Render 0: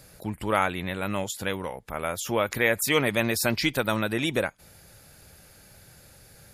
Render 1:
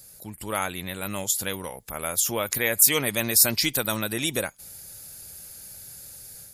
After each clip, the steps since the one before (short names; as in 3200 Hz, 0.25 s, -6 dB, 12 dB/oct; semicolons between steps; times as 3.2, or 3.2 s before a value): high shelf 12000 Hz +6 dB; AGC gain up to 6 dB; tone controls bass +1 dB, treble +14 dB; gain -8.5 dB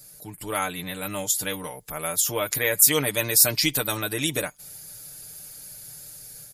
comb 6.7 ms, depth 70%; gain -1 dB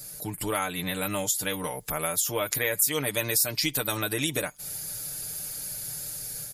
compressor 2.5:1, threshold -35 dBFS, peak gain reduction 15.5 dB; gain +6.5 dB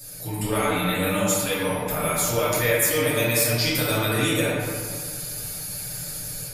in parallel at -6.5 dB: soft clip -20.5 dBFS, distortion -14 dB; on the sum: reverb RT60 1.9 s, pre-delay 3 ms, DRR -9 dB; gain -6 dB